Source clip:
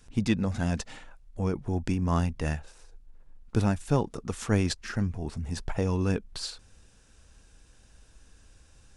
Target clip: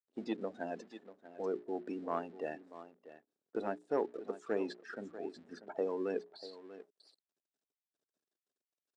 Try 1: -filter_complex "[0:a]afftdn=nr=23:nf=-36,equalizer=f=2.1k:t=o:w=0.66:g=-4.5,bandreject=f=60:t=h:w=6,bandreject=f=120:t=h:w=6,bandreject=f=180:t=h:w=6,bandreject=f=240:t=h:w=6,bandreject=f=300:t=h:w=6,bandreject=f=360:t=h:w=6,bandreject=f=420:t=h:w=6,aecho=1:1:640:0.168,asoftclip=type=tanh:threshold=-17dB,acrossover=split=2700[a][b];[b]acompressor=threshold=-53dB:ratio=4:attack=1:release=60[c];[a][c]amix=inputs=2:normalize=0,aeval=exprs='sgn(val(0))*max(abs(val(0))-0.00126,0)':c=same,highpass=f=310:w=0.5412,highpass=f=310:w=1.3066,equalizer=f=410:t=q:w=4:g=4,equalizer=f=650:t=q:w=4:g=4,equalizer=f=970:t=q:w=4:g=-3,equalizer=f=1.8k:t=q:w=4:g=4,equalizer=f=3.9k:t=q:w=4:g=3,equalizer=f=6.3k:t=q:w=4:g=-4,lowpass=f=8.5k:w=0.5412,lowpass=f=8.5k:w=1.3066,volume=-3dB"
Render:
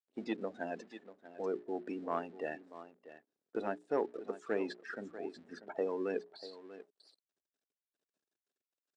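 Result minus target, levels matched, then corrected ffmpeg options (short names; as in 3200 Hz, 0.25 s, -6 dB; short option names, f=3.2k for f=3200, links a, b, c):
2000 Hz band +3.0 dB
-filter_complex "[0:a]afftdn=nr=23:nf=-36,equalizer=f=2.1k:t=o:w=0.66:g=-12,bandreject=f=60:t=h:w=6,bandreject=f=120:t=h:w=6,bandreject=f=180:t=h:w=6,bandreject=f=240:t=h:w=6,bandreject=f=300:t=h:w=6,bandreject=f=360:t=h:w=6,bandreject=f=420:t=h:w=6,aecho=1:1:640:0.168,asoftclip=type=tanh:threshold=-17dB,acrossover=split=2700[a][b];[b]acompressor=threshold=-53dB:ratio=4:attack=1:release=60[c];[a][c]amix=inputs=2:normalize=0,aeval=exprs='sgn(val(0))*max(abs(val(0))-0.00126,0)':c=same,highpass=f=310:w=0.5412,highpass=f=310:w=1.3066,equalizer=f=410:t=q:w=4:g=4,equalizer=f=650:t=q:w=4:g=4,equalizer=f=970:t=q:w=4:g=-3,equalizer=f=1.8k:t=q:w=4:g=4,equalizer=f=3.9k:t=q:w=4:g=3,equalizer=f=6.3k:t=q:w=4:g=-4,lowpass=f=8.5k:w=0.5412,lowpass=f=8.5k:w=1.3066,volume=-3dB"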